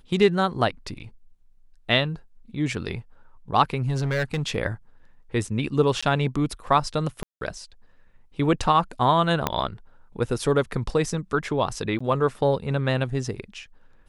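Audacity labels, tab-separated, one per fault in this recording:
3.870000	4.560000	clipped -20.5 dBFS
6.010000	6.030000	dropout 15 ms
7.230000	7.410000	dropout 182 ms
9.470000	9.470000	pop -7 dBFS
11.990000	12.010000	dropout 15 ms

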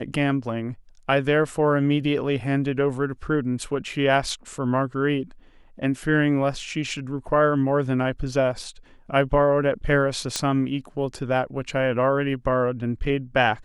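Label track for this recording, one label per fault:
10.360000	10.360000	pop -9 dBFS

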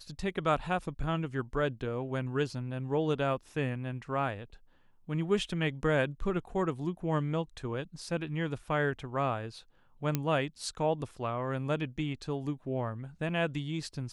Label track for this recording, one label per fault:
10.150000	10.150000	pop -14 dBFS

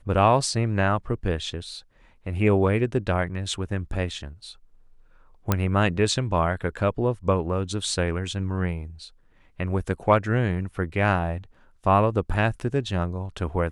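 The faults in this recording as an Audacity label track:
5.520000	5.520000	pop -6 dBFS

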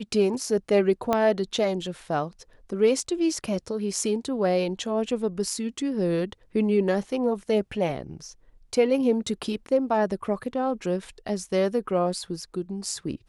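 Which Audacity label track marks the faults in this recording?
1.130000	1.130000	pop -10 dBFS

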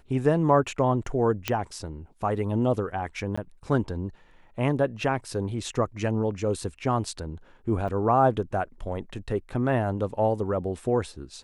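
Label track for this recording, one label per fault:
1.480000	1.480000	pop -10 dBFS
3.360000	3.380000	dropout 15 ms
7.880000	7.890000	dropout 6.3 ms

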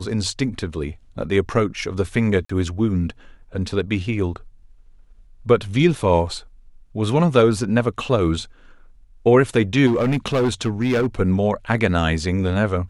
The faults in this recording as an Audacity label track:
2.450000	2.490000	dropout 44 ms
9.860000	11.070000	clipped -15 dBFS

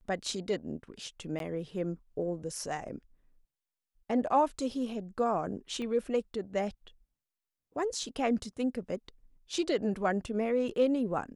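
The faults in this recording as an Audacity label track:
1.390000	1.400000	dropout 12 ms
5.820000	5.820000	pop -28 dBFS

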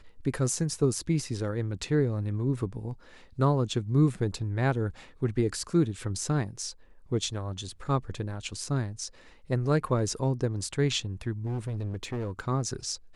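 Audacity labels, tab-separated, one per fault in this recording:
11.460000	12.400000	clipped -28.5 dBFS

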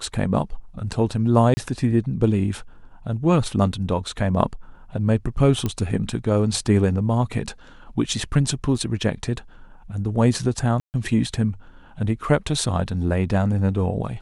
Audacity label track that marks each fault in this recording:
1.540000	1.570000	dropout 30 ms
5.660000	5.660000	pop -11 dBFS
8.780000	8.780000	dropout 4.7 ms
10.800000	10.940000	dropout 139 ms

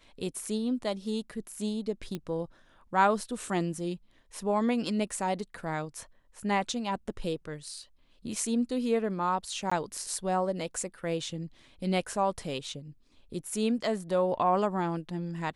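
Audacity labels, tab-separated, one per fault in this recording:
2.150000	2.150000	pop -21 dBFS
9.700000	9.710000	dropout 15 ms

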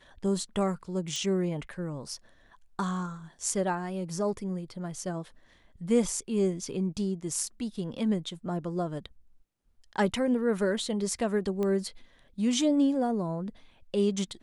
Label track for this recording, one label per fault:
1.160000	1.160000	pop -22 dBFS
11.630000	11.630000	pop -20 dBFS

